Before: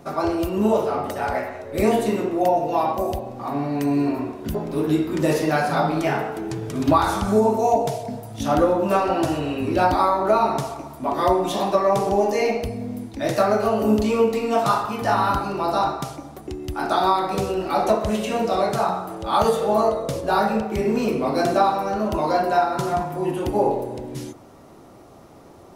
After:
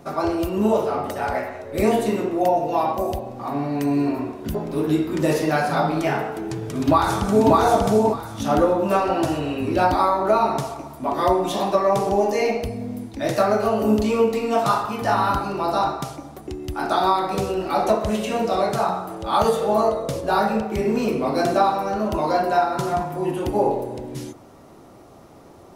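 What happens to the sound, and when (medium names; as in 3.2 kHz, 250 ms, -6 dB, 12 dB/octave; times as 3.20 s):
6.48–7.54 s: echo throw 590 ms, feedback 20%, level -0.5 dB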